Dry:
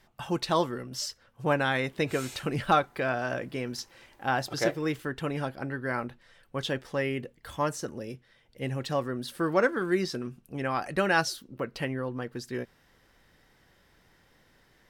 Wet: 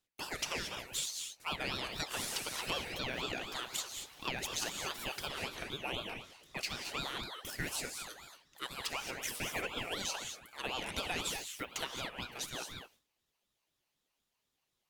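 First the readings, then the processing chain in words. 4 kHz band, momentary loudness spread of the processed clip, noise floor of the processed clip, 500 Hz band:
+1.0 dB, 7 LU, -84 dBFS, -15.0 dB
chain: high-pass 590 Hz 12 dB/octave; gate with hold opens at -52 dBFS; tilt EQ +3 dB/octave; compression, threshold -32 dBFS, peak gain reduction 13.5 dB; gated-style reverb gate 250 ms rising, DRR 4 dB; ring modulator with a swept carrier 1.4 kHz, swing 40%, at 4 Hz

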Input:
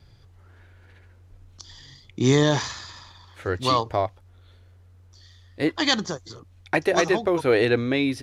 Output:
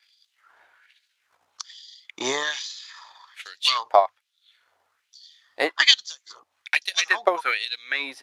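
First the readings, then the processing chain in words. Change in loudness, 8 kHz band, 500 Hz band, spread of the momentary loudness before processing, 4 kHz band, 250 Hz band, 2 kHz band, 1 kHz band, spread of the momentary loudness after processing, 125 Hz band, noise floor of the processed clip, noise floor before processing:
+0.5 dB, +2.0 dB, -5.0 dB, 14 LU, +6.5 dB, -17.0 dB, +4.0 dB, +2.0 dB, 22 LU, under -30 dB, -75 dBFS, -53 dBFS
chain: hum notches 50/100 Hz; transient shaper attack +10 dB, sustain -4 dB; LFO high-pass sine 1.2 Hz 760–4000 Hz; trim -2 dB

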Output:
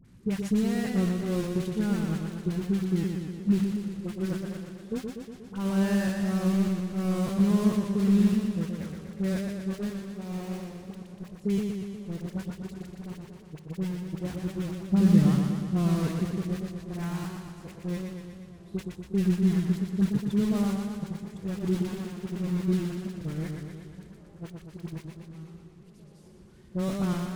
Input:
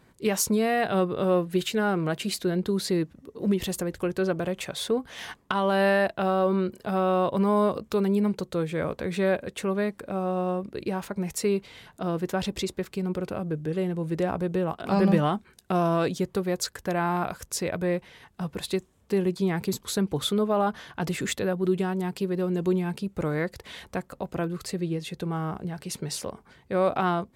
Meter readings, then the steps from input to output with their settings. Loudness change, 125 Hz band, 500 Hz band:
-1.5 dB, +2.0 dB, -10.0 dB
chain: one-bit delta coder 64 kbps, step -24.5 dBFS; gate -24 dBFS, range -22 dB; FFT filter 190 Hz 0 dB, 670 Hz -20 dB, 1.6 kHz -15 dB; in parallel at -11 dB: bit crusher 6-bit; on the sum: phase dispersion highs, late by 47 ms, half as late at 1.1 kHz; on a send: feedback echo behind a band-pass 914 ms, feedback 83%, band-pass 580 Hz, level -22 dB; on the sum: modulated delay 120 ms, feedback 66%, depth 89 cents, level -4.5 dB; trim +1 dB

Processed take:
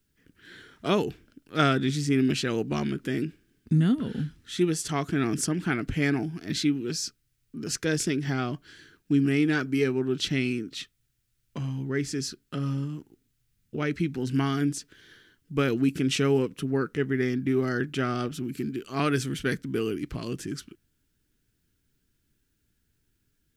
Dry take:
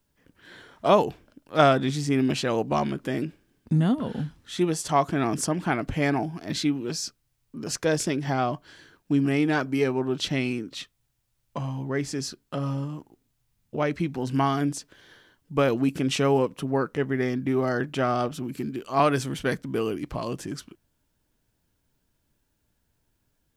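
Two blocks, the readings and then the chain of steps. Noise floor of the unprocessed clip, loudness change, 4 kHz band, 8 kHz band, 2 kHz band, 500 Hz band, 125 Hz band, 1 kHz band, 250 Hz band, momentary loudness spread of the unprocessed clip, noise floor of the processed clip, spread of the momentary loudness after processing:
-74 dBFS, -1.5 dB, 0.0 dB, 0.0 dB, 0.0 dB, -4.0 dB, 0.0 dB, -8.0 dB, 0.0 dB, 11 LU, -74 dBFS, 11 LU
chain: high-order bell 760 Hz -11.5 dB 1.3 oct

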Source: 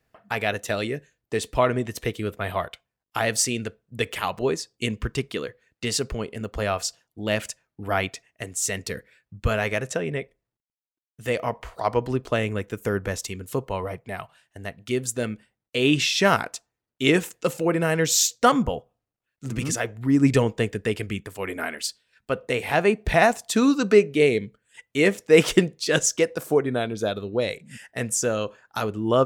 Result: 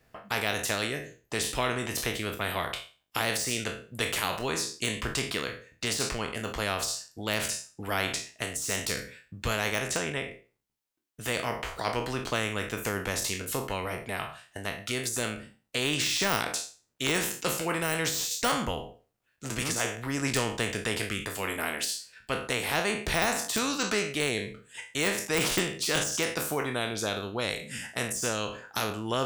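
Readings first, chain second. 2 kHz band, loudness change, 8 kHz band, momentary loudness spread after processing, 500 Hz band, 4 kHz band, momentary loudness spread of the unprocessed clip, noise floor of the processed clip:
-2.5 dB, -5.5 dB, -2.5 dB, 8 LU, -9.5 dB, -0.5 dB, 14 LU, -73 dBFS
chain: spectral sustain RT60 0.34 s; de-esser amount 55%; spectrum-flattening compressor 2:1; trim -6 dB

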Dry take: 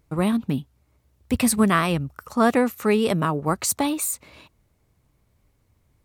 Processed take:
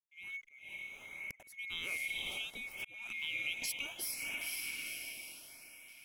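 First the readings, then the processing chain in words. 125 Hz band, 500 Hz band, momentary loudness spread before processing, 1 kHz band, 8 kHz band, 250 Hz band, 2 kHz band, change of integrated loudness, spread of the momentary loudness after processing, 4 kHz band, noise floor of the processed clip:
-36.0 dB, -34.0 dB, 10 LU, -32.5 dB, -15.0 dB, -38.5 dB, -7.0 dB, -17.0 dB, 11 LU, -5.5 dB, -62 dBFS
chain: split-band scrambler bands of 2 kHz; hysteresis with a dead band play -39.5 dBFS; echo that smears into a reverb 482 ms, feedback 45%, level -7 dB; compression 4:1, threshold -32 dBFS, peak gain reduction 16 dB; LFO notch saw up 0.68 Hz 380–5000 Hz; slow attack 497 ms; trim -4.5 dB

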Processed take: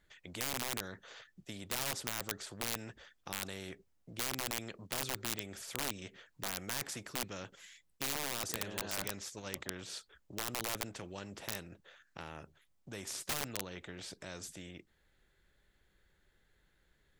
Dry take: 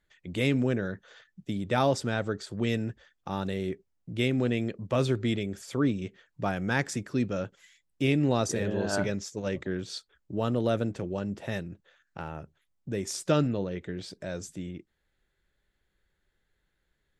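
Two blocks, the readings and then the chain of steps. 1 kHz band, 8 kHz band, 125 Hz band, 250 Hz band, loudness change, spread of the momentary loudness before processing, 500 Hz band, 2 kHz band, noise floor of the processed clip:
-9.0 dB, +1.5 dB, -18.0 dB, -18.5 dB, -9.5 dB, 14 LU, -16.5 dB, -7.0 dB, -73 dBFS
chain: integer overflow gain 19.5 dB; spectrum-flattening compressor 2:1; trim +7.5 dB

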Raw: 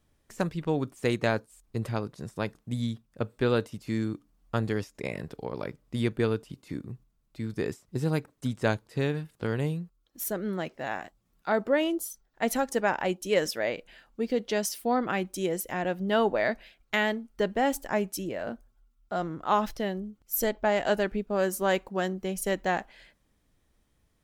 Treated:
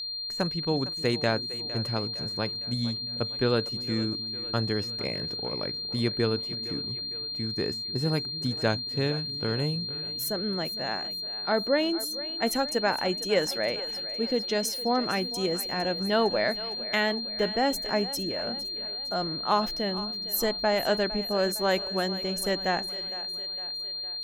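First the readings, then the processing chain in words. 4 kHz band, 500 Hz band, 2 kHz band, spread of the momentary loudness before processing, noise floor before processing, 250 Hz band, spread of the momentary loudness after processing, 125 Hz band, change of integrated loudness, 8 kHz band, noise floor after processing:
+14.5 dB, 0.0 dB, 0.0 dB, 11 LU, -71 dBFS, 0.0 dB, 6 LU, 0.0 dB, +2.0 dB, 0.0 dB, -35 dBFS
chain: two-band feedback delay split 320 Hz, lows 303 ms, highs 458 ms, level -15.5 dB; whistle 4.2 kHz -32 dBFS

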